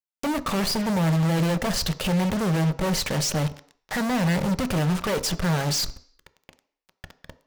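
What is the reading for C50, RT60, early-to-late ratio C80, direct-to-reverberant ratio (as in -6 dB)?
17.5 dB, 0.55 s, 20.5 dB, 11.0 dB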